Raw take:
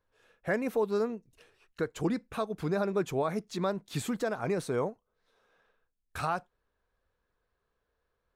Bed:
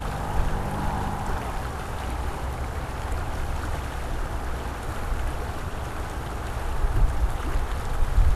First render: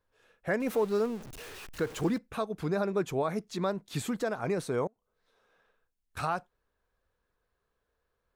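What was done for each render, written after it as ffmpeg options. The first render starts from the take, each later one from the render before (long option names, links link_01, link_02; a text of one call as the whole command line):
ffmpeg -i in.wav -filter_complex "[0:a]asettb=1/sr,asplit=3[link_01][link_02][link_03];[link_01]atrim=end=0.604[link_04];[link_02]atrim=start=0.6:end=2.18,asetpts=PTS-STARTPTS,afade=type=in:duration=0.004:curve=qsin,afade=type=out:start_time=1.576:duration=0.004:curve=qsin,aeval=exprs='val(0)+0.5*0.01*sgn(val(0))':channel_layout=same[link_05];[link_03]atrim=start=2.176[link_06];[link_04][link_05]acrossfade=duration=0.004:curve1=hsin:curve2=qsin[link_07];[link_07][link_06]acrossfade=duration=0.004:curve1=qsin:curve2=hsin,asettb=1/sr,asplit=3[link_08][link_09][link_10];[link_08]atrim=end=4.874[link_11];[link_09]atrim=start=4.87:end=6.17,asetpts=PTS-STARTPTS,afade=type=in:duration=0.004:curve=qsin,afade=type=out:start_time=1.296:duration=0.004:curve=qsin,acompressor=threshold=-59dB:ratio=16:attack=3.2:release=140:knee=1:detection=peak[link_12];[link_10]atrim=start=6.166[link_13];[link_11][link_12]acrossfade=duration=0.004:curve1=hsin:curve2=qsin[link_14];[link_14][link_13]acrossfade=duration=0.004:curve1=qsin:curve2=hsin" out.wav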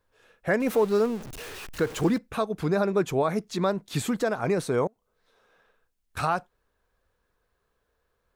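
ffmpeg -i in.wav -af "volume=5.5dB" out.wav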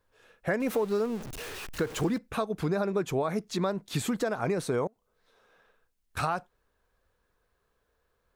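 ffmpeg -i in.wav -af "acompressor=threshold=-25dB:ratio=4" out.wav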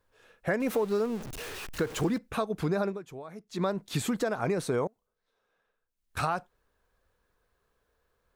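ffmpeg -i in.wav -filter_complex "[0:a]asplit=5[link_01][link_02][link_03][link_04][link_05];[link_01]atrim=end=3.02,asetpts=PTS-STARTPTS,afade=type=out:start_time=2.88:duration=0.14:curve=qua:silence=0.199526[link_06];[link_02]atrim=start=3.02:end=3.47,asetpts=PTS-STARTPTS,volume=-14dB[link_07];[link_03]atrim=start=3.47:end=5.16,asetpts=PTS-STARTPTS,afade=type=in:duration=0.14:curve=qua:silence=0.199526,afade=type=out:start_time=1.37:duration=0.32:silence=0.237137[link_08];[link_04]atrim=start=5.16:end=5.86,asetpts=PTS-STARTPTS,volume=-12.5dB[link_09];[link_05]atrim=start=5.86,asetpts=PTS-STARTPTS,afade=type=in:duration=0.32:silence=0.237137[link_10];[link_06][link_07][link_08][link_09][link_10]concat=n=5:v=0:a=1" out.wav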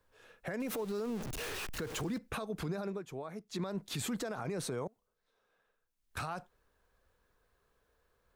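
ffmpeg -i in.wav -filter_complex "[0:a]acrossover=split=150|3000[link_01][link_02][link_03];[link_02]acompressor=threshold=-29dB:ratio=6[link_04];[link_01][link_04][link_03]amix=inputs=3:normalize=0,alimiter=level_in=5dB:limit=-24dB:level=0:latency=1:release=54,volume=-5dB" out.wav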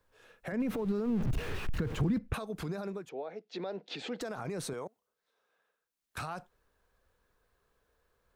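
ffmpeg -i in.wav -filter_complex "[0:a]asettb=1/sr,asplit=3[link_01][link_02][link_03];[link_01]atrim=end=0.524[link_04];[link_02]atrim=start=0.52:end=2.34,asetpts=PTS-STARTPTS,afade=type=in:duration=0.004:curve=qsin,afade=type=out:start_time=1.816:duration=0.004:curve=qsin,bass=frequency=250:gain=13,treble=frequency=4000:gain=-11[link_05];[link_03]atrim=start=2.336[link_06];[link_04][link_05]acrossfade=duration=0.004:curve1=hsin:curve2=qsin[link_07];[link_07][link_06]acrossfade=duration=0.004:curve1=qsin:curve2=hsin,asettb=1/sr,asplit=3[link_08][link_09][link_10];[link_08]atrim=end=3.094[link_11];[link_09]atrim=start=3.09:end=4.21,asetpts=PTS-STARTPTS,afade=type=in:duration=0.004:curve=qsin,afade=type=out:start_time=1.116:duration=0.004:curve=qsin,highpass=frequency=210:width=0.5412,highpass=frequency=210:width=1.3066,equalizer=frequency=210:width_type=q:width=4:gain=-6,equalizer=frequency=490:width_type=q:width=4:gain=9,equalizer=frequency=760:width_type=q:width=4:gain=6,equalizer=frequency=1100:width_type=q:width=4:gain=-8,equalizer=frequency=2700:width_type=q:width=4:gain=3,lowpass=frequency=4700:width=0.5412,lowpass=frequency=4700:width=1.3066[link_12];[link_10]atrim=start=4.206[link_13];[link_11][link_12]acrossfade=duration=0.004:curve1=hsin:curve2=qsin[link_14];[link_14][link_13]acrossfade=duration=0.004:curve1=qsin:curve2=hsin,asettb=1/sr,asplit=3[link_15][link_16][link_17];[link_15]atrim=end=4.734[link_18];[link_16]atrim=start=4.73:end=6.18,asetpts=PTS-STARTPTS,afade=type=in:duration=0.004:curve=qsin,afade=type=out:start_time=1.446:duration=0.004:curve=qsin,highpass=frequency=340:poles=1[link_19];[link_17]atrim=start=6.176[link_20];[link_18][link_19]acrossfade=duration=0.004:curve1=hsin:curve2=qsin[link_21];[link_21][link_20]acrossfade=duration=0.004:curve1=qsin:curve2=hsin" out.wav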